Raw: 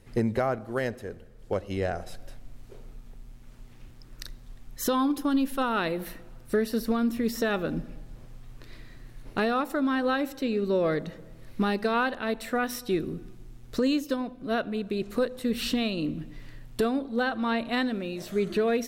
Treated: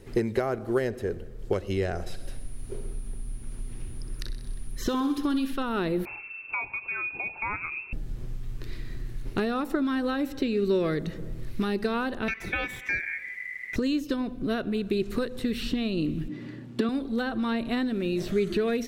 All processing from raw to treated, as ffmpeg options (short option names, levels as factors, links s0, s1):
-filter_complex "[0:a]asettb=1/sr,asplit=3[s0][s1][s2];[s0]atrim=end=2.074[s3];[s1]atrim=start=2.07:end=5.53,asetpts=PTS-STARTPTS,afade=t=in:d=0.004:c=qsin,afade=t=out:st=3.456:d=0.004:c=qsin,aeval=exprs='val(0)+0.00112*sin(2*PI*9700*n/s)':c=same,aecho=1:1:63|126|189|252|315|378|441:0.251|0.148|0.0874|0.0516|0.0304|0.018|0.0106,atrim=end_sample=152586[s4];[s2]atrim=start=5.526[s5];[s3][s4]acrossfade=d=0.004:c1=hsin:c2=qsin[s6];[s6][s5]acrossfade=d=0.004:c1=qsin:c2=hsin,asettb=1/sr,asplit=3[s7][s8][s9];[s7]atrim=end=6.054[s10];[s8]atrim=start=6.05:end=7.93,asetpts=PTS-STARTPTS,afade=t=in:d=0.004:c=qsin,afade=t=out:st=1.876:d=0.004:c=qsin,equalizer=f=750:w=3.3:g=-9.5,lowpass=f=2300:t=q:w=0.5098,lowpass=f=2300:t=q:w=0.6013,lowpass=f=2300:t=q:w=0.9,lowpass=f=2300:t=q:w=2.563,afreqshift=-2700[s11];[s9]atrim=start=7.926[s12];[s10][s11]acrossfade=d=0.004:c1=hsin:c2=qsin[s13];[s13][s12]acrossfade=d=0.004:c1=qsin:c2=hsin,asettb=1/sr,asplit=3[s14][s15][s16];[s14]atrim=end=12.284[s17];[s15]atrim=start=12.28:end=13.76,asetpts=PTS-STARTPTS,afade=t=in:d=0.004:c=qsin,afade=t=out:st=1.476:d=0.004:c=qsin,aeval=exprs='val(0)*sin(2*PI*2000*n/s)':c=same,equalizer=f=2300:t=o:w=0.85:g=12[s18];[s16]atrim=start=13.756[s19];[s17][s18]acrossfade=d=0.004:c1=hsin:c2=qsin[s20];[s20][s19]acrossfade=d=0.004:c1=qsin:c2=hsin,asettb=1/sr,asplit=3[s21][s22][s23];[s21]atrim=end=16.284[s24];[s22]atrim=start=16.28:end=16.89,asetpts=PTS-STARTPTS,afade=t=in:d=0.004:c=qsin,afade=t=out:st=0.606:d=0.004:c=qsin,highpass=f=180:w=0.5412,highpass=f=180:w=1.3066,aemphasis=mode=reproduction:type=bsi,aecho=1:1:3.5:0.34,atrim=end_sample=26901[s25];[s23]atrim=start=16.886[s26];[s24][s25]acrossfade=d=0.004:c1=hsin:c2=qsin[s27];[s27][s26]acrossfade=d=0.004:c1=qsin:c2=hsin,asubboost=boost=3:cutoff=230,acrossover=split=1300|5200[s28][s29][s30];[s28]acompressor=threshold=0.02:ratio=4[s31];[s29]acompressor=threshold=0.00794:ratio=4[s32];[s30]acompressor=threshold=0.00141:ratio=4[s33];[s31][s32][s33]amix=inputs=3:normalize=0,equalizer=f=380:t=o:w=0.57:g=10.5,volume=1.68"